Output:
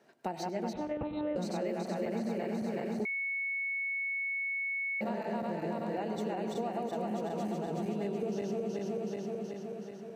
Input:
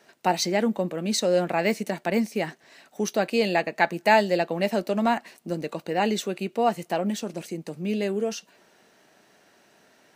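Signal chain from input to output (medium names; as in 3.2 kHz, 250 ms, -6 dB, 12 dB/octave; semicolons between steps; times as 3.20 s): backward echo that repeats 187 ms, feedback 79%, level -1 dB; 0.73–1.36 s: monotone LPC vocoder at 8 kHz 300 Hz; high-pass 93 Hz; reverberation RT60 0.80 s, pre-delay 83 ms, DRR 12 dB; compression, threshold -27 dBFS, peak gain reduction 15 dB; tilt shelf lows +5.5 dB, about 1.2 kHz; 3.05–5.01 s: bleep 2.21 kHz -23 dBFS; trim -8.5 dB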